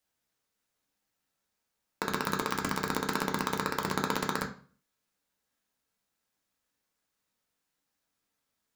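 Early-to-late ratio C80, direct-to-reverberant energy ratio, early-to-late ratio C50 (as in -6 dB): 15.5 dB, 1.5 dB, 10.5 dB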